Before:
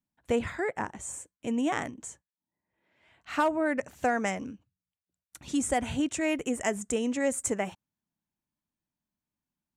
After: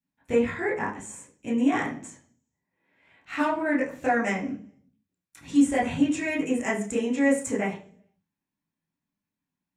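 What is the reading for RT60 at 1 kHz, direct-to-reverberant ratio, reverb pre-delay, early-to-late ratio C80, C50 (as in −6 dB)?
0.40 s, −7.0 dB, 17 ms, 14.0 dB, 8.5 dB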